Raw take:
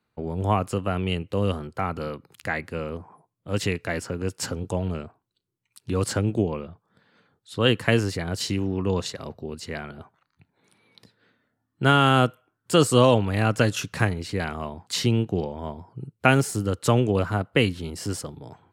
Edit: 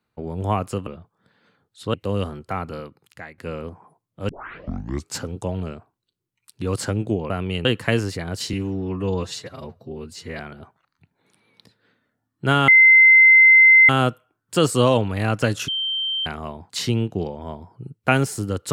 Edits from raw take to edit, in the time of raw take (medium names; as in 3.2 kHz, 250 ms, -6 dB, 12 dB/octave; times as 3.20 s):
0.87–1.22 s: swap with 6.58–7.65 s
1.87–2.66 s: fade out, to -16.5 dB
3.57 s: tape start 0.89 s
8.53–9.77 s: stretch 1.5×
12.06 s: add tone 2.07 kHz -7.5 dBFS 1.21 s
13.85–14.43 s: bleep 3.13 kHz -21.5 dBFS